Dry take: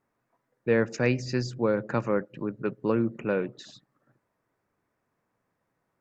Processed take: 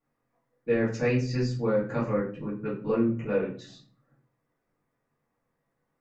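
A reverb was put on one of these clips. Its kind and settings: shoebox room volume 32 m³, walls mixed, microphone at 1.6 m; gain -11.5 dB

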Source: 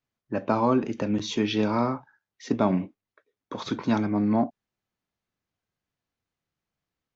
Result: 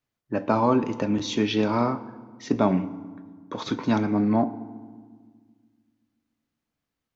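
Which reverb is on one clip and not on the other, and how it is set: FDN reverb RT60 1.6 s, low-frequency decay 1.5×, high-frequency decay 0.6×, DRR 13 dB; gain +1.5 dB

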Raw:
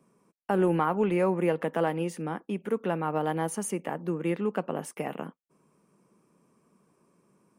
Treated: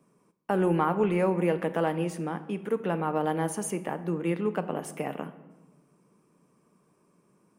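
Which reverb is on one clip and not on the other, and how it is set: shoebox room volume 750 m³, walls mixed, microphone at 0.43 m

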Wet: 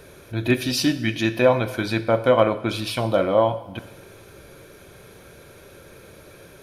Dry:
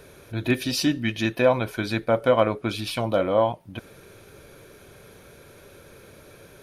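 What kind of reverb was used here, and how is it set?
two-slope reverb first 0.82 s, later 2.5 s, DRR 10.5 dB; gain +2 dB

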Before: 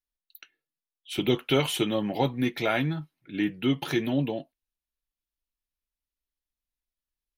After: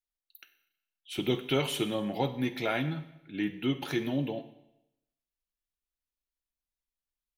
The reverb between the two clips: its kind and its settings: Schroeder reverb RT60 0.86 s, combs from 31 ms, DRR 11.5 dB; gain -4.5 dB

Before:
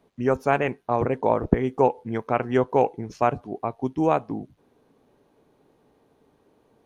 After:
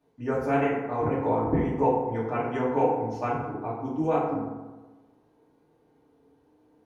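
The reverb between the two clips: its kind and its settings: FDN reverb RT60 1.2 s, low-frequency decay 1.05×, high-frequency decay 0.45×, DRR -8.5 dB; gain -13 dB

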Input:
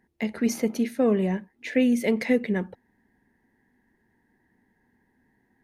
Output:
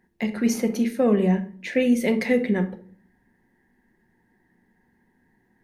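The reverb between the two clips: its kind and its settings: shoebox room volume 440 m³, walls furnished, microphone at 0.94 m; gain +1.5 dB

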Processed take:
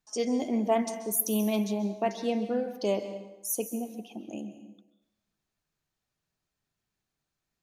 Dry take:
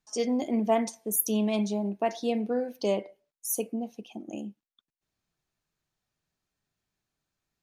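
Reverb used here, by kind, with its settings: plate-style reverb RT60 0.94 s, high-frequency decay 0.85×, pre-delay 0.12 s, DRR 10.5 dB; gain -1 dB

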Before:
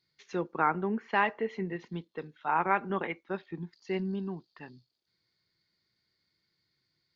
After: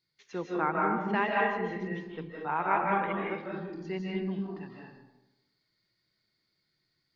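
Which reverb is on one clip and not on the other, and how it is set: digital reverb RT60 1 s, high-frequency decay 0.5×, pre-delay 0.115 s, DRR -3 dB; gain -3.5 dB

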